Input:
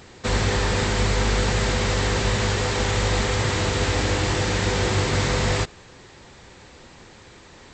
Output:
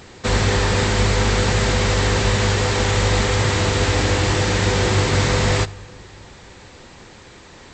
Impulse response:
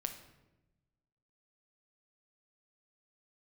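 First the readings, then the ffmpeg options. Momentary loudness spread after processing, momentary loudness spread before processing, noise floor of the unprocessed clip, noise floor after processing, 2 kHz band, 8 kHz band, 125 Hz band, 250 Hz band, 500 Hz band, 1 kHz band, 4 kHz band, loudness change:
1 LU, 1 LU, -47 dBFS, -43 dBFS, +3.5 dB, +3.5 dB, +5.0 dB, +4.0 dB, +4.0 dB, +3.5 dB, +3.5 dB, +4.0 dB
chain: -filter_complex "[0:a]asplit=2[a][b];[1:a]atrim=start_sample=2205,asetrate=26019,aresample=44100[c];[b][c]afir=irnorm=-1:irlink=0,volume=-14.5dB[d];[a][d]amix=inputs=2:normalize=0,volume=2dB"

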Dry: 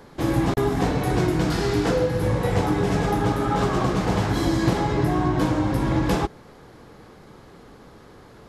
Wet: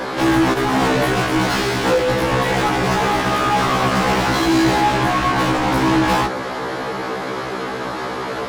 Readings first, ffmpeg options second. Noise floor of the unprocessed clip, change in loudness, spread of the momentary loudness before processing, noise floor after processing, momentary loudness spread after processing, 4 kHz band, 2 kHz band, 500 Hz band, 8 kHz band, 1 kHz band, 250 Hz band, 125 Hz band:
-48 dBFS, +4.5 dB, 1 LU, -26 dBFS, 9 LU, +11.5 dB, +12.0 dB, +5.0 dB, +9.0 dB, +10.0 dB, +4.0 dB, -0.5 dB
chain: -filter_complex "[0:a]asplit=2[a][b];[b]highpass=f=720:p=1,volume=38dB,asoftclip=type=tanh:threshold=-8dB[c];[a][c]amix=inputs=2:normalize=0,lowpass=f=2.8k:p=1,volume=-6dB,afftfilt=real='re*1.73*eq(mod(b,3),0)':imag='im*1.73*eq(mod(b,3),0)':win_size=2048:overlap=0.75"

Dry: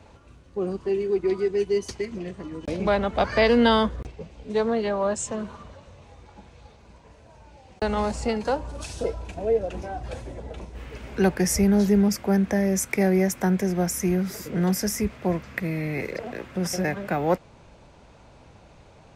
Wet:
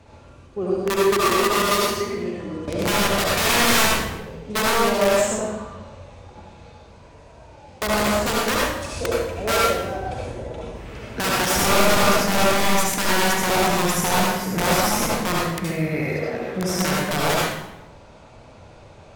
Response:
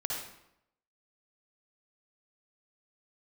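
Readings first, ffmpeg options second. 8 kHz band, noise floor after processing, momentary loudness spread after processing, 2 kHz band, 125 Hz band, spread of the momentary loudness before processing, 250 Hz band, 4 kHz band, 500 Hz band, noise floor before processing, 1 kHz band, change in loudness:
+8.5 dB, -46 dBFS, 13 LU, +9.5 dB, +0.5 dB, 15 LU, -1.0 dB, +12.0 dB, +2.0 dB, -52 dBFS, +8.5 dB, +4.0 dB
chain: -filter_complex "[0:a]aeval=exprs='(mod(7.94*val(0)+1,2)-1)/7.94':c=same[a];[1:a]atrim=start_sample=2205,asetrate=35280,aresample=44100[b];[a][b]afir=irnorm=-1:irlink=0"

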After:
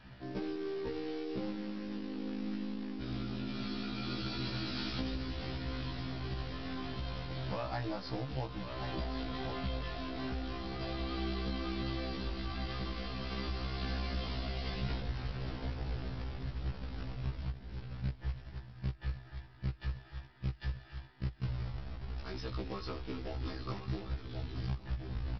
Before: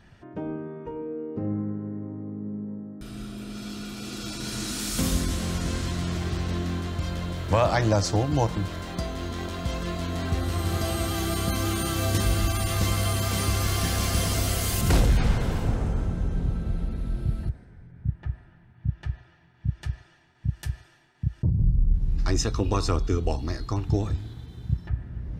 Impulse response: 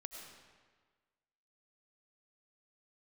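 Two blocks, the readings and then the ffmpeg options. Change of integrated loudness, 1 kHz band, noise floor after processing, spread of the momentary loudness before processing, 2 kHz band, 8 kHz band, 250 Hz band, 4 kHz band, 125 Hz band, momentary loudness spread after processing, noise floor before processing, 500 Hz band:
-12.0 dB, -11.5 dB, -53 dBFS, 12 LU, -10.0 dB, under -30 dB, -9.0 dB, -9.5 dB, -12.5 dB, 5 LU, -56 dBFS, -11.0 dB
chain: -af "aeval=exprs='if(lt(val(0),0),0.708*val(0),val(0))':c=same,aecho=1:1:1080|2160:0.141|0.0226,aresample=11025,acrusher=bits=3:mode=log:mix=0:aa=0.000001,aresample=44100,acompressor=threshold=-35dB:ratio=10,afftfilt=real='re*1.73*eq(mod(b,3),0)':imag='im*1.73*eq(mod(b,3),0)':win_size=2048:overlap=0.75,volume=3.5dB"

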